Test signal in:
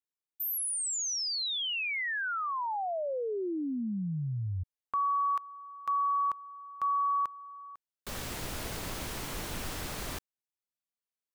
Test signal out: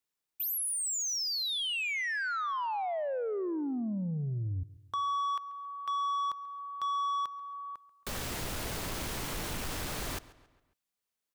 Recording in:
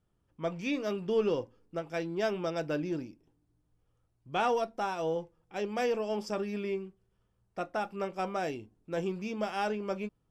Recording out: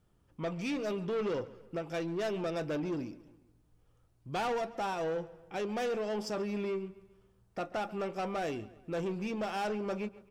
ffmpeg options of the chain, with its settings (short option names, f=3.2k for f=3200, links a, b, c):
-filter_complex "[0:a]asplit=2[a][b];[b]acompressor=threshold=-43dB:ratio=6:release=265:detection=peak,volume=0dB[c];[a][c]amix=inputs=2:normalize=0,asoftclip=type=tanh:threshold=-29.5dB,asplit=2[d][e];[e]adelay=137,lowpass=f=4.8k:p=1,volume=-18.5dB,asplit=2[f][g];[g]adelay=137,lowpass=f=4.8k:p=1,volume=0.49,asplit=2[h][i];[i]adelay=137,lowpass=f=4.8k:p=1,volume=0.49,asplit=2[j][k];[k]adelay=137,lowpass=f=4.8k:p=1,volume=0.49[l];[d][f][h][j][l]amix=inputs=5:normalize=0"